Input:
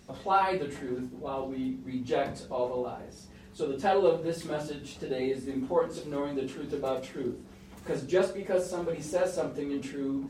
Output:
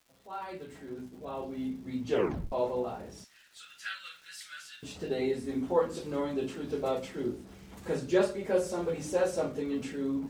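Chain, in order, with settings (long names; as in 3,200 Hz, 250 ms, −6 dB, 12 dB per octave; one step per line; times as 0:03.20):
fade in at the beginning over 2.19 s
0:02.10: tape stop 0.42 s
0:03.24–0:04.83: elliptic high-pass filter 1,400 Hz, stop band 40 dB
surface crackle 420 per second −52 dBFS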